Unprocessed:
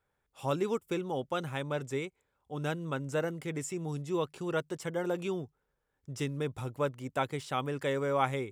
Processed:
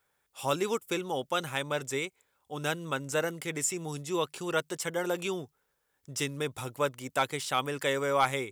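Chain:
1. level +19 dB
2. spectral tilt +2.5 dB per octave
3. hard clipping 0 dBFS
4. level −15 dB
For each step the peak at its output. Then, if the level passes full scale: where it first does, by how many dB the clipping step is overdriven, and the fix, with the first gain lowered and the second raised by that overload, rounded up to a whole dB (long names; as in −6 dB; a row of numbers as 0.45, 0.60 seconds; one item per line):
+5.5, +6.5, 0.0, −15.0 dBFS
step 1, 6.5 dB
step 1 +12 dB, step 4 −8 dB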